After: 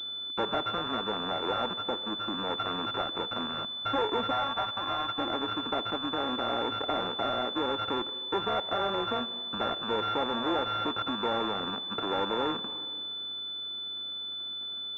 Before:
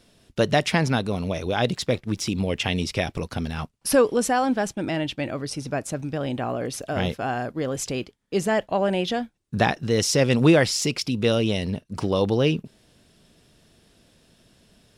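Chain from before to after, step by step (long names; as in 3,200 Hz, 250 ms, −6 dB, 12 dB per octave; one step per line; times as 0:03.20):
samples sorted by size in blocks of 32 samples
soft clipping −23 dBFS, distortion −7 dB
four-comb reverb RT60 1.8 s, combs from 33 ms, DRR 16.5 dB
downward compressor, threshold −32 dBFS, peak gain reduction 8 dB
high-pass filter 270 Hz 24 dB per octave
0:01.73–0:02.38: de-essing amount 90%
0:04.31–0:05.18: low shelf with overshoot 580 Hz −10.5 dB, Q 1.5
switching amplifier with a slow clock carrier 3,500 Hz
level +6 dB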